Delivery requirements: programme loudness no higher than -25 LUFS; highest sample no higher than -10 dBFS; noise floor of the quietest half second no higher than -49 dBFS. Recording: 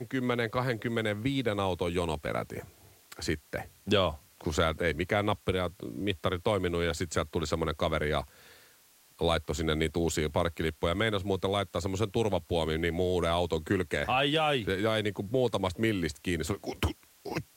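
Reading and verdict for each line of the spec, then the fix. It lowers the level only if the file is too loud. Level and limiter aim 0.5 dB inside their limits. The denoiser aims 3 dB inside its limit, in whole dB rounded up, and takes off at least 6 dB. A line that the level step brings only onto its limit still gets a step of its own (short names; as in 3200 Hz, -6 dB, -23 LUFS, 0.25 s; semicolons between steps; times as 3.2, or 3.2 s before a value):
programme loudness -30.5 LUFS: OK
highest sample -13.0 dBFS: OK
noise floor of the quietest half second -61 dBFS: OK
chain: none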